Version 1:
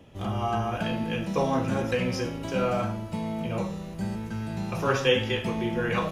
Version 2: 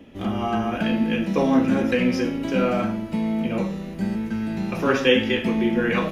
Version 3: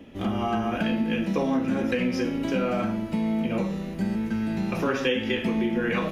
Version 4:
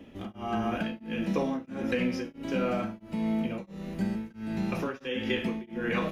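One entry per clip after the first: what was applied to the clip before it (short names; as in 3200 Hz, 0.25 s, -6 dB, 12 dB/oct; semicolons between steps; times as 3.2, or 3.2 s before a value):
graphic EQ 125/250/1000/2000/8000 Hz -9/+11/-3/+5/-5 dB; gain +2.5 dB
compressor 4:1, threshold -22 dBFS, peak gain reduction 9 dB
beating tremolo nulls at 1.5 Hz; gain -2.5 dB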